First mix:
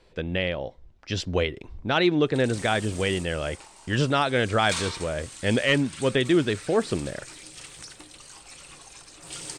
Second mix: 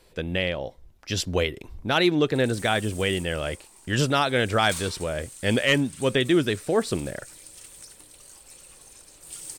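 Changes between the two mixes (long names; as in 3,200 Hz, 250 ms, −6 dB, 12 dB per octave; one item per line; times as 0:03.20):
background −11.0 dB
master: remove high-frequency loss of the air 100 metres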